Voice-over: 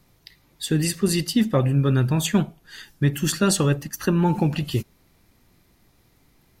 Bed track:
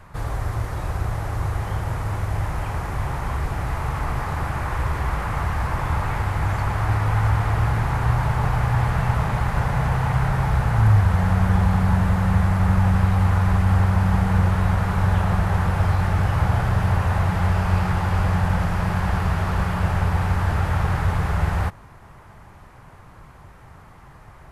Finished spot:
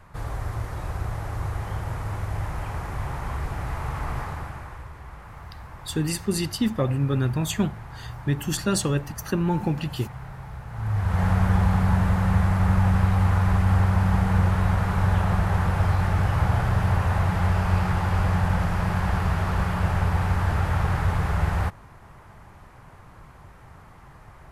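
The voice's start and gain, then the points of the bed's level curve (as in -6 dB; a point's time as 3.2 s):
5.25 s, -4.0 dB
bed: 4.2 s -4.5 dB
4.91 s -17.5 dB
10.67 s -17.5 dB
11.22 s -2 dB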